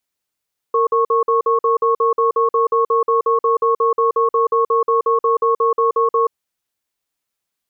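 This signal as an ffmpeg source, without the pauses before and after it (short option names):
-f lavfi -i "aevalsrc='0.178*(sin(2*PI*460*t)+sin(2*PI*1100*t))*clip(min(mod(t,0.18),0.13-mod(t,0.18))/0.005,0,1)':d=5.57:s=44100"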